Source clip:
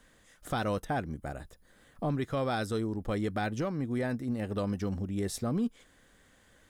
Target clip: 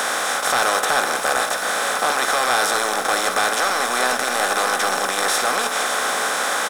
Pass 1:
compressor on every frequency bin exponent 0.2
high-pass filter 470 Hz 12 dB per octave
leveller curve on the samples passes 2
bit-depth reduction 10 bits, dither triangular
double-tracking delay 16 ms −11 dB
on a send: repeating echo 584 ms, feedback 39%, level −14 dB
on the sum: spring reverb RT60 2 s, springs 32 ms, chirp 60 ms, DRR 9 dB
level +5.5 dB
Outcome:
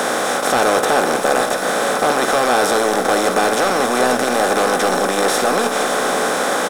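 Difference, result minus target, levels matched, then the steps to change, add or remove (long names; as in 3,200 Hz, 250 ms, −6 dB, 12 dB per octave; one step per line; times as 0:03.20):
500 Hz band +5.5 dB
change: high-pass filter 1,000 Hz 12 dB per octave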